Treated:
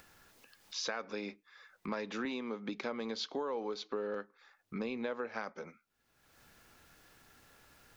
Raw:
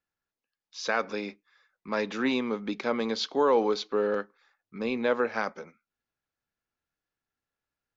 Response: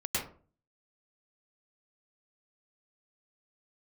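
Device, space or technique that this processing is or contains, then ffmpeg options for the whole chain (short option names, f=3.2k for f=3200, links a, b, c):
upward and downward compression: -filter_complex "[0:a]acompressor=mode=upward:threshold=-46dB:ratio=2.5,acompressor=threshold=-40dB:ratio=6,asettb=1/sr,asplit=3[a][b][c];[a]atrim=end=2.254[d];[b]atrim=start=2.25:end=2.69,asetpts=PTS-STARTPTS,afade=t=in:d=0.004:c=qsin,afade=t=out:st=0.436:d=0.004:c=qsin,highpass=160[e];[c]atrim=start=2.686[f];[d][e]acrossfade=d=0.004:c1=hsin:c2=qsin[g];[g][f]acrossfade=d=0.004:c1=qsin:c2=hsin,volume=4dB"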